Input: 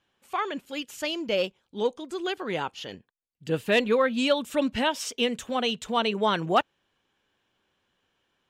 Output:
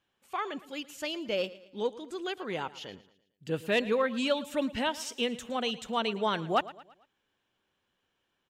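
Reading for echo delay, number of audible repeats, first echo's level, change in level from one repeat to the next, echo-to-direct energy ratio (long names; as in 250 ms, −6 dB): 112 ms, 3, −18.0 dB, −7.0 dB, −17.0 dB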